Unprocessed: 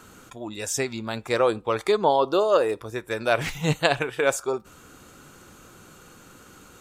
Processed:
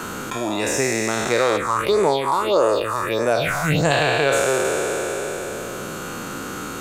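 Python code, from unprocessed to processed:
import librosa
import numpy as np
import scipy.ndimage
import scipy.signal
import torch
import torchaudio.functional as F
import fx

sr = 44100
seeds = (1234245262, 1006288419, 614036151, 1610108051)

y = fx.spec_trails(x, sr, decay_s=2.73)
y = fx.phaser_stages(y, sr, stages=4, low_hz=440.0, high_hz=3800.0, hz=1.6, feedback_pct=40, at=(1.56, 3.9), fade=0.02)
y = fx.band_squash(y, sr, depth_pct=70)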